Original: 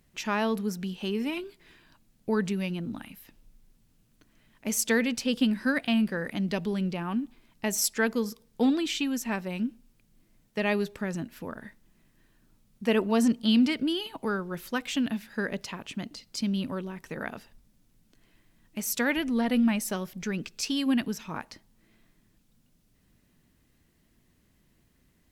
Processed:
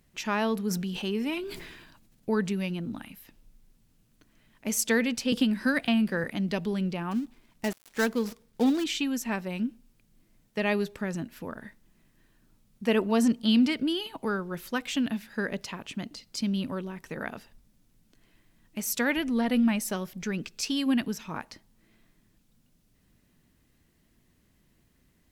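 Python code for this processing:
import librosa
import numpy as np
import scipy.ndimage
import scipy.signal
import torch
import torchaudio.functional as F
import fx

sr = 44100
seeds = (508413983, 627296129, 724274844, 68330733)

y = fx.sustainer(x, sr, db_per_s=42.0, at=(0.69, 2.31), fade=0.02)
y = fx.band_squash(y, sr, depth_pct=70, at=(5.32, 6.24))
y = fx.dead_time(y, sr, dead_ms=0.11, at=(7.11, 8.84))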